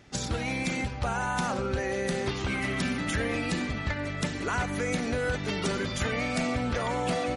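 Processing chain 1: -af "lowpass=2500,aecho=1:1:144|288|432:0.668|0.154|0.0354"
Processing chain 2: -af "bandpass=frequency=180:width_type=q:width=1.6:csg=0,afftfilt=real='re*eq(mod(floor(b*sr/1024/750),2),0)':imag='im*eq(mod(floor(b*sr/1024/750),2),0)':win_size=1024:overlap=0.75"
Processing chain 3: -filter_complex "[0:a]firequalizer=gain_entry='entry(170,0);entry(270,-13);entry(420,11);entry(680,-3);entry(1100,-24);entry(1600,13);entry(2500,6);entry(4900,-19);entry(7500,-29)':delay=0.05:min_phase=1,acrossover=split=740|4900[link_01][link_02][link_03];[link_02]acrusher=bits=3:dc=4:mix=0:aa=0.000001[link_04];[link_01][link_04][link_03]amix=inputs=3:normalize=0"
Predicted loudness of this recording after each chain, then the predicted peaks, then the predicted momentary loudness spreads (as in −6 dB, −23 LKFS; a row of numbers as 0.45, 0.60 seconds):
−29.0, −37.0, −27.5 LKFS; −16.0, −21.5, −11.0 dBFS; 3, 4, 5 LU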